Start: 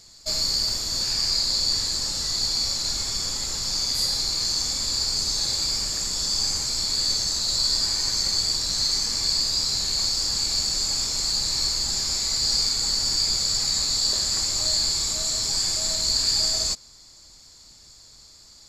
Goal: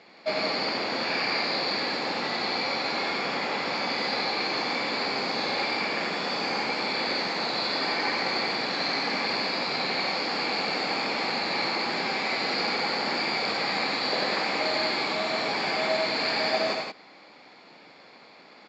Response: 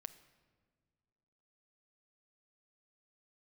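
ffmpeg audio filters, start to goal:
-af "highpass=f=210:w=0.5412,highpass=f=210:w=1.3066,equalizer=f=500:t=q:w=4:g=4,equalizer=f=770:t=q:w=4:g=6,equalizer=f=2300:t=q:w=4:g=7,lowpass=f=2700:w=0.5412,lowpass=f=2700:w=1.3066,aecho=1:1:93.29|169.1:0.631|0.562,volume=2.51"

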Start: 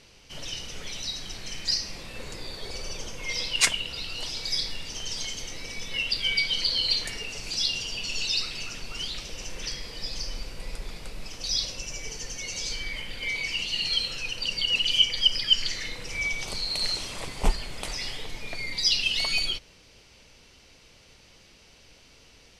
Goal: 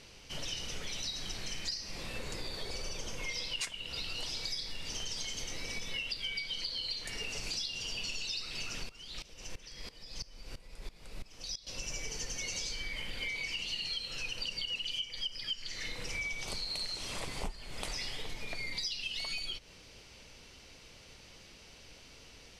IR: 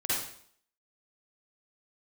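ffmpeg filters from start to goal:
-filter_complex "[0:a]acompressor=threshold=0.02:ratio=16,asettb=1/sr,asplit=3[s0][s1][s2];[s0]atrim=end=8.894[s3];[s1]atrim=start=8.89:end=11.67,asetpts=PTS-STARTPTS,afade=t=in:d=0.004:c=qsin,afade=t=out:st=2.776:d=0.004:c=qsin,aeval=exprs='val(0)*pow(10,-19*if(lt(mod(-3*n/s,1),2*abs(-3)/1000),1-mod(-3*n/s,1)/(2*abs(-3)/1000),(mod(-3*n/s,1)-2*abs(-3)/1000)/(1-2*abs(-3)/1000))/20)':c=same[s4];[s2]atrim=start=11.666[s5];[s3][s4]acrossfade=d=0.004:c1=hsin:c2=qsin[s6];[s6][s5]acrossfade=d=0.004:c1=qsin:c2=hsin"

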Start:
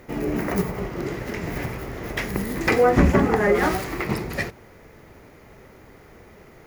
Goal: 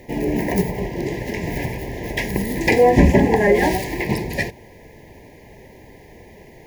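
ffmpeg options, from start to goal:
-af "asuperstop=centerf=1300:order=20:qfactor=2.2,volume=1.58"

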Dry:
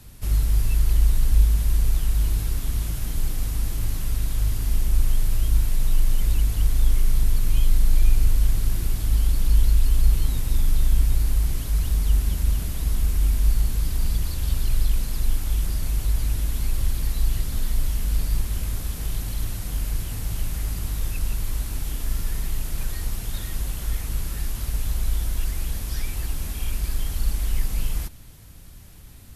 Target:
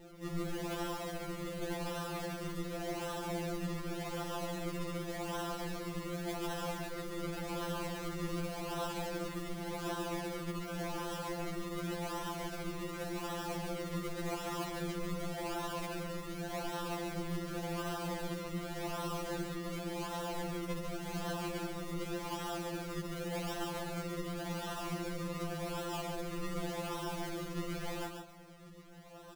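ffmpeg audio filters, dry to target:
-af "highpass=1400,asetrate=26222,aresample=44100,atempo=1.68179,acrusher=samples=38:mix=1:aa=0.000001:lfo=1:lforange=38:lforate=0.88,aecho=1:1:142:0.501,afftfilt=real='re*2.83*eq(mod(b,8),0)':imag='im*2.83*eq(mod(b,8),0)':win_size=2048:overlap=0.75,volume=1.5"

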